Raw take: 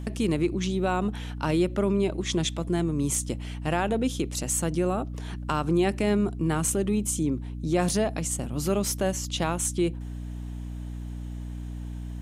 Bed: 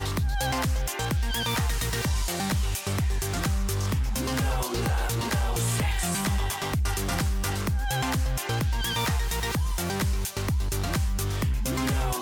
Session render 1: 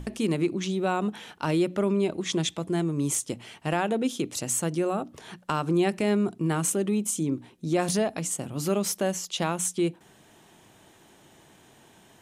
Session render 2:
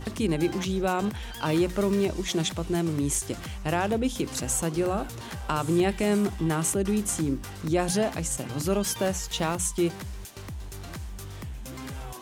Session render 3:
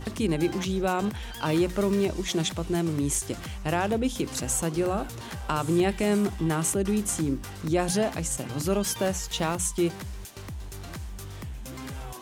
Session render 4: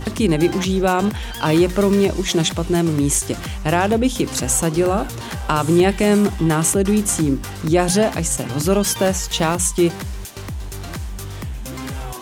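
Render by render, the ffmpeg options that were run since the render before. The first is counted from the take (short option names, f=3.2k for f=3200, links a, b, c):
-af "bandreject=f=60:t=h:w=6,bandreject=f=120:t=h:w=6,bandreject=f=180:t=h:w=6,bandreject=f=240:t=h:w=6,bandreject=f=300:t=h:w=6"
-filter_complex "[1:a]volume=-11.5dB[a];[0:a][a]amix=inputs=2:normalize=0"
-af anull
-af "volume=9dB"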